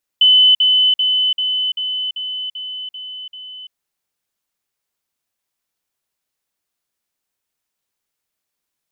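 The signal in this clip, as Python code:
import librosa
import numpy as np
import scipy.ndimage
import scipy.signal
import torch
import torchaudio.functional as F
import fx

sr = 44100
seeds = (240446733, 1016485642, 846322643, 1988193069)

y = fx.level_ladder(sr, hz=3020.0, from_db=-7.0, step_db=-3.0, steps=9, dwell_s=0.34, gap_s=0.05)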